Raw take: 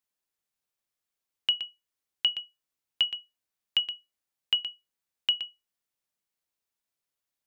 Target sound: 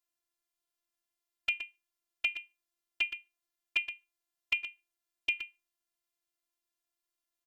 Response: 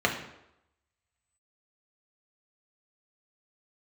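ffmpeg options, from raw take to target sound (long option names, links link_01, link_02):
-filter_complex "[0:a]asplit=2[link_01][link_02];[1:a]atrim=start_sample=2205,atrim=end_sample=6615[link_03];[link_02][link_03]afir=irnorm=-1:irlink=0,volume=-33.5dB[link_04];[link_01][link_04]amix=inputs=2:normalize=0,asplit=3[link_05][link_06][link_07];[link_06]asetrate=33038,aresample=44100,atempo=1.33484,volume=-14dB[link_08];[link_07]asetrate=37084,aresample=44100,atempo=1.18921,volume=-5dB[link_09];[link_05][link_08][link_09]amix=inputs=3:normalize=0,afftfilt=real='hypot(re,im)*cos(PI*b)':imag='0':win_size=512:overlap=0.75"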